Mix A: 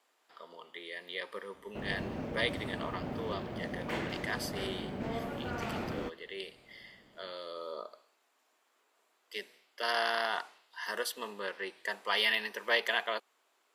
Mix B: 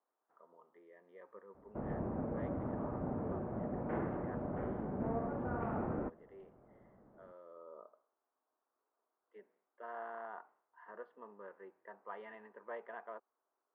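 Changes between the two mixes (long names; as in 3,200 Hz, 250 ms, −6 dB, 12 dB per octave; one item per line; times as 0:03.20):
speech −11.5 dB
master: add low-pass filter 1,300 Hz 24 dB per octave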